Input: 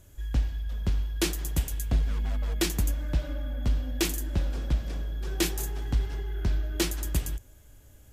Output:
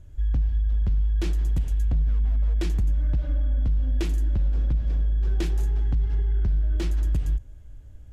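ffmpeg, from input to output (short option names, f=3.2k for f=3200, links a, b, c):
-af "aemphasis=mode=reproduction:type=bsi,acontrast=38,alimiter=limit=-8.5dB:level=0:latency=1:release=73,volume=-9dB"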